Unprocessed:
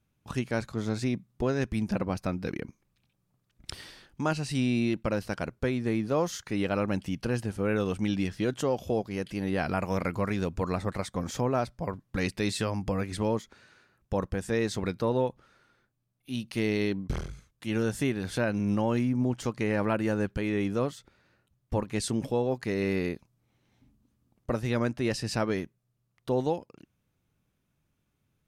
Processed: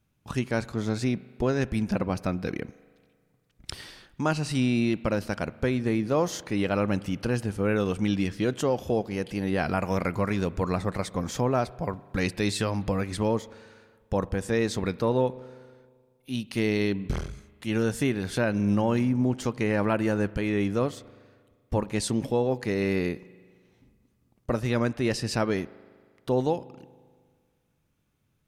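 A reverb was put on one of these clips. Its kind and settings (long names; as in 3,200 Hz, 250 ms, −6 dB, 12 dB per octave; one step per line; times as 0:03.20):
spring reverb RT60 1.8 s, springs 39 ms, chirp 30 ms, DRR 19 dB
level +2.5 dB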